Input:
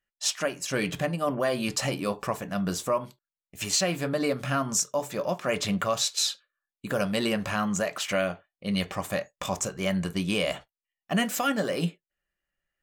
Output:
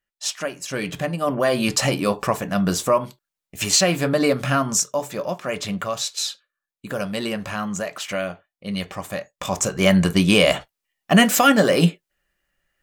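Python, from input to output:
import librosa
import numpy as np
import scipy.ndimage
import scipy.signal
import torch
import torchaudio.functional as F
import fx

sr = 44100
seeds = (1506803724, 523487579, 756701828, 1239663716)

y = fx.gain(x, sr, db=fx.line((0.83, 1.0), (1.61, 8.0), (4.39, 8.0), (5.55, 0.5), (9.28, 0.5), (9.82, 11.5)))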